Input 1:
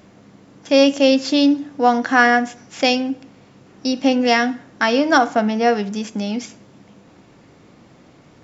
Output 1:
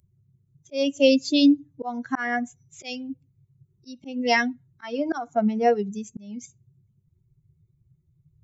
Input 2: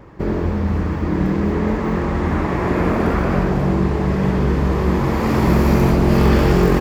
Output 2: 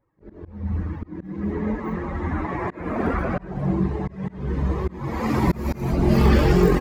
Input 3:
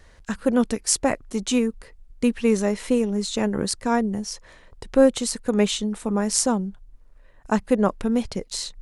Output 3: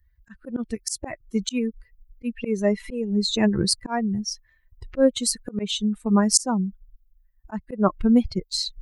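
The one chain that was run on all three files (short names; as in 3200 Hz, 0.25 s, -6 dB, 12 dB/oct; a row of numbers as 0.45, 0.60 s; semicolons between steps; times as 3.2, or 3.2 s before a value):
per-bin expansion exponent 2; auto swell 0.311 s; match loudness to -24 LUFS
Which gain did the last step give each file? 0.0, +1.0, +10.5 dB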